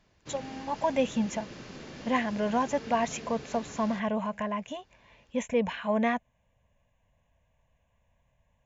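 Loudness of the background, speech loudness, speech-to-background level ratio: −44.5 LKFS, −30.5 LKFS, 14.0 dB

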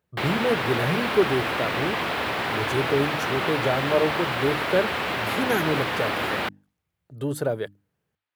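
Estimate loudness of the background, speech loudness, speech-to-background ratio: −26.0 LKFS, −27.0 LKFS, −1.0 dB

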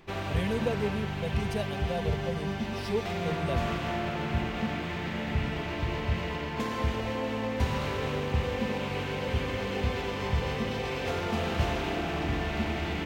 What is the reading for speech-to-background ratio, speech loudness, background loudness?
−4.0 dB, −35.5 LKFS, −31.5 LKFS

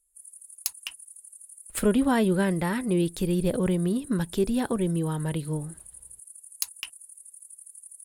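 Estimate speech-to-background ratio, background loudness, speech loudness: 17.5 dB, −44.5 LKFS, −27.0 LKFS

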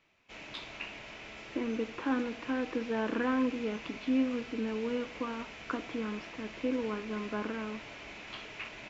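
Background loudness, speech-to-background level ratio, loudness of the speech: −45.5 LKFS, 10.0 dB, −35.5 LKFS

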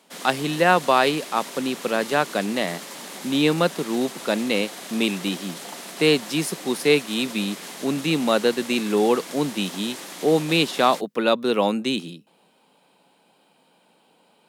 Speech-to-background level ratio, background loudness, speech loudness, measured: 13.0 dB, −35.5 LKFS, −22.5 LKFS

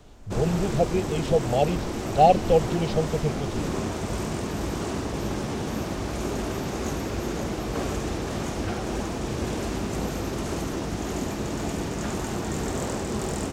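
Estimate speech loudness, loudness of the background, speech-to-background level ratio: −24.0 LKFS, −30.0 LKFS, 6.0 dB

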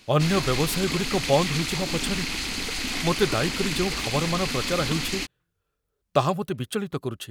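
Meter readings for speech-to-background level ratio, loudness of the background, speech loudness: 1.5 dB, −28.0 LKFS, −26.5 LKFS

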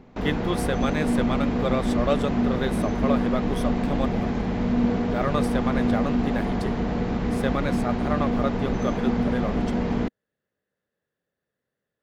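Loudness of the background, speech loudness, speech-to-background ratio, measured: −25.5 LKFS, −30.0 LKFS, −4.5 dB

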